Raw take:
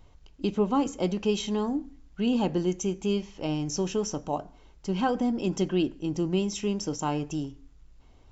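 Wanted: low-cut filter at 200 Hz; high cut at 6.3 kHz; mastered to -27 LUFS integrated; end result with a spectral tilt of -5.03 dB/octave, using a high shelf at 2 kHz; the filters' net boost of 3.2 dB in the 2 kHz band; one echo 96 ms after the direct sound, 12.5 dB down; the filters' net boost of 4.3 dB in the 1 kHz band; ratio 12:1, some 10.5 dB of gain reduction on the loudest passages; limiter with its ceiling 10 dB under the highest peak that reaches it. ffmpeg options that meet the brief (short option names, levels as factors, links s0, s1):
-af "highpass=200,lowpass=6300,equalizer=f=1000:t=o:g=5.5,highshelf=f=2000:g=-6,equalizer=f=2000:t=o:g=7.5,acompressor=threshold=0.0355:ratio=12,alimiter=level_in=1.68:limit=0.0631:level=0:latency=1,volume=0.596,aecho=1:1:96:0.237,volume=3.76"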